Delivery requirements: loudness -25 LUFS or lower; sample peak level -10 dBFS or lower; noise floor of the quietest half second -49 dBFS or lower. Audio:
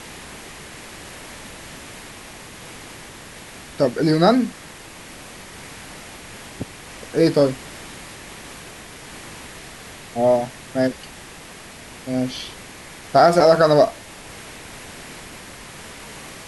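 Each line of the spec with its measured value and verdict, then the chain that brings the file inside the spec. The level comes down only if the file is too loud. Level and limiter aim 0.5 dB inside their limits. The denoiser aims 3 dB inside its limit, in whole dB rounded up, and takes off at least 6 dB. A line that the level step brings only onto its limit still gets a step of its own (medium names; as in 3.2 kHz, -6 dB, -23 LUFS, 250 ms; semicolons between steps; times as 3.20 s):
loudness -18.5 LUFS: fail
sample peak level -3.5 dBFS: fail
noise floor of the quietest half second -40 dBFS: fail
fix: noise reduction 6 dB, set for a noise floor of -40 dBFS; trim -7 dB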